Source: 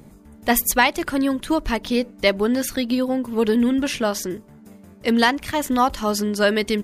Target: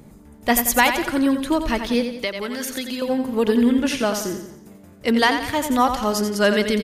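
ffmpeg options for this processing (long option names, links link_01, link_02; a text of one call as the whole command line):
ffmpeg -i in.wav -filter_complex "[0:a]aecho=1:1:88|176|264|352|440:0.398|0.183|0.0842|0.0388|0.0178,asettb=1/sr,asplit=3[link_01][link_02][link_03];[link_01]atrim=end=2.164[link_04];[link_02]atrim=start=2.16:end=3.02,asetpts=PTS-STARTPTS,afade=type=in:duration=0.004:curve=qsin,afade=type=out:start_time=0.856:duration=0.004:curve=qsin,acrossover=split=120|950[link_05][link_06][link_07];[link_05]acompressor=threshold=-54dB:ratio=4[link_08];[link_06]acompressor=threshold=-29dB:ratio=4[link_09];[link_07]acompressor=threshold=-26dB:ratio=4[link_10];[link_08][link_09][link_10]amix=inputs=3:normalize=0[link_11];[link_03]atrim=start=3.016[link_12];[link_04][link_11]acrossfade=duration=0.004:curve1=hsin:curve2=qsin[link_13];[link_13][link_12]acrossfade=duration=0.004:curve1=qsin:curve2=hsin" out.wav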